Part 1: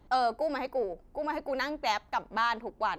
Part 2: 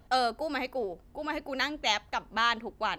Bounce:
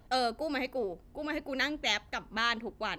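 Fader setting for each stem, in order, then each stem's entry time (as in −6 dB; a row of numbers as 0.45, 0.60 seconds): −8.0, −1.5 decibels; 0.00, 0.00 seconds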